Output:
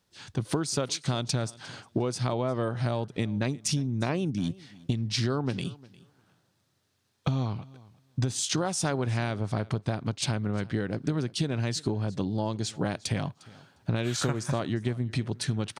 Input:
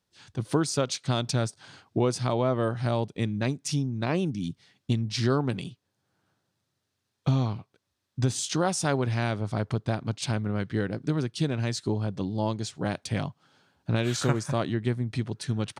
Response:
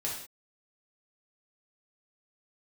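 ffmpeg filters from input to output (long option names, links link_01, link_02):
-filter_complex "[0:a]acompressor=threshold=-31dB:ratio=6,asplit=2[link_01][link_02];[link_02]aecho=0:1:354|708:0.0794|0.0119[link_03];[link_01][link_03]amix=inputs=2:normalize=0,volume=6dB"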